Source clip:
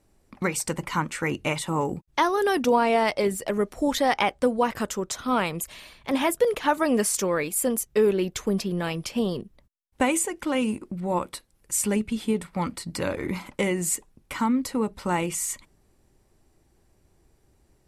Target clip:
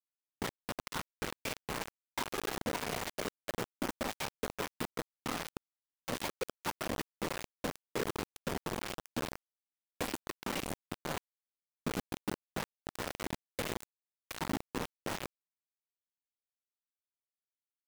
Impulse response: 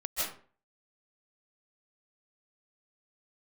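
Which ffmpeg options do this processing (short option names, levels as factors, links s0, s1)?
-filter_complex "[0:a]highshelf=f=2500:g=-5,asplit=2[s0][s1];[s1]acompressor=threshold=0.0178:ratio=8,volume=1.12[s2];[s0][s2]amix=inputs=2:normalize=0,afftfilt=real='hypot(re,im)*cos(2*PI*random(0))':imag='hypot(re,im)*sin(2*PI*random(1))':win_size=512:overlap=0.75,acrossover=split=210|3700[s3][s4][s5];[s3]acompressor=threshold=0.00891:ratio=4[s6];[s4]acompressor=threshold=0.02:ratio=4[s7];[s5]acompressor=threshold=0.00398:ratio=4[s8];[s6][s7][s8]amix=inputs=3:normalize=0,acrusher=bits=4:mix=0:aa=0.000001,volume=0.668"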